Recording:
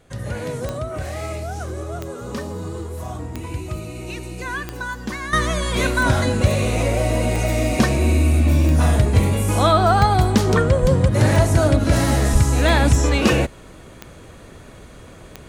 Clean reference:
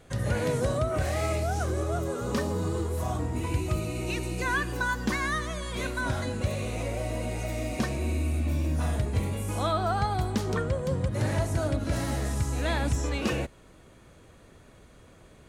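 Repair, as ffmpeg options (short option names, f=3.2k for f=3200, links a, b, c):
-filter_complex "[0:a]adeclick=t=4,asplit=3[a][b][c];[a]afade=t=out:st=10.81:d=0.02[d];[b]highpass=f=140:w=0.5412,highpass=f=140:w=1.3066,afade=t=in:st=10.81:d=0.02,afade=t=out:st=10.93:d=0.02[e];[c]afade=t=in:st=10.93:d=0.02[f];[d][e][f]amix=inputs=3:normalize=0,asplit=3[g][h][i];[g]afade=t=out:st=12.32:d=0.02[j];[h]highpass=f=140:w=0.5412,highpass=f=140:w=1.3066,afade=t=in:st=12.32:d=0.02,afade=t=out:st=12.44:d=0.02[k];[i]afade=t=in:st=12.44:d=0.02[l];[j][k][l]amix=inputs=3:normalize=0,asetnsamples=n=441:p=0,asendcmd='5.33 volume volume -12dB',volume=0dB"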